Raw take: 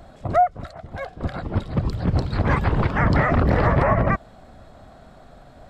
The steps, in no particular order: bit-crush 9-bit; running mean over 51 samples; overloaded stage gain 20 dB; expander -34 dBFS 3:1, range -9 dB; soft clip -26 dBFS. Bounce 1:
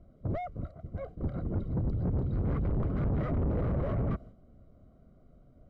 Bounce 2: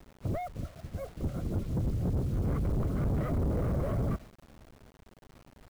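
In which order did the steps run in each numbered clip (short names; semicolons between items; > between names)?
bit-crush > expander > overloaded stage > running mean > soft clip; overloaded stage > expander > running mean > soft clip > bit-crush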